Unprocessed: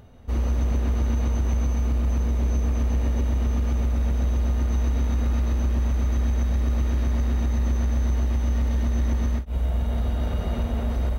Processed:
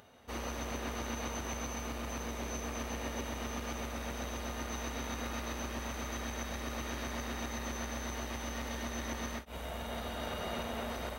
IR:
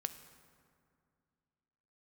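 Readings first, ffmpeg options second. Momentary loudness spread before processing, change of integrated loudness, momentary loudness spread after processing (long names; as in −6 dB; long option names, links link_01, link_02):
2 LU, −14.5 dB, 2 LU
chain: -af "highpass=frequency=1000:poles=1,volume=2dB"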